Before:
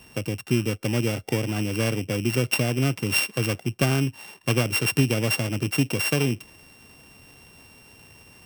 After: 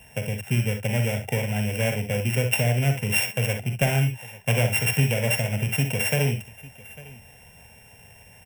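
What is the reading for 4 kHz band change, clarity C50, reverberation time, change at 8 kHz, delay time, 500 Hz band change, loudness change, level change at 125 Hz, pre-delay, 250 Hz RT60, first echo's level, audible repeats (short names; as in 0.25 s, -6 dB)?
-2.0 dB, none, none, +0.5 dB, 43 ms, 0.0 dB, +0.5 dB, +2.5 dB, none, none, -9.5 dB, 2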